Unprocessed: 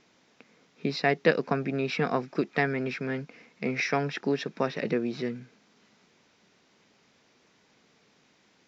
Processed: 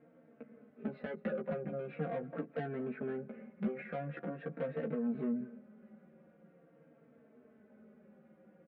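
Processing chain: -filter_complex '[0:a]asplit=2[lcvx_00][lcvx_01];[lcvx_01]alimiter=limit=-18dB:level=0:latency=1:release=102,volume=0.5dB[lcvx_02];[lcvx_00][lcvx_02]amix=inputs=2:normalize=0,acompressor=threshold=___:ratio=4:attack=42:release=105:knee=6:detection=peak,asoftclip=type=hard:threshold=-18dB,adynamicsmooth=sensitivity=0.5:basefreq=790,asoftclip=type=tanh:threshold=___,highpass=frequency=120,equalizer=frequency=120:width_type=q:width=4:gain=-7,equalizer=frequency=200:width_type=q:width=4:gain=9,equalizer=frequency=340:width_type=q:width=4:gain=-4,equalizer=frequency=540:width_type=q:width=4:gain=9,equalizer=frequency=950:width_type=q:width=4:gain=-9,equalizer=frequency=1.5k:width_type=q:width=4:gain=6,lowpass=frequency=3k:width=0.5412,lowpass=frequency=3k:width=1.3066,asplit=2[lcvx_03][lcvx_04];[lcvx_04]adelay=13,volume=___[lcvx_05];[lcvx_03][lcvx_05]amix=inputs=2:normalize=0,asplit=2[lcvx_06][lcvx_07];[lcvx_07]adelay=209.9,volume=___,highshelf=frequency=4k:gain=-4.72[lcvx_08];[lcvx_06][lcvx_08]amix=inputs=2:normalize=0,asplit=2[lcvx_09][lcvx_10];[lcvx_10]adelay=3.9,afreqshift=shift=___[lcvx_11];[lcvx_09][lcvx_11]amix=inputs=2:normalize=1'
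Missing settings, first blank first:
-36dB, -31.5dB, -4dB, -20dB, -0.44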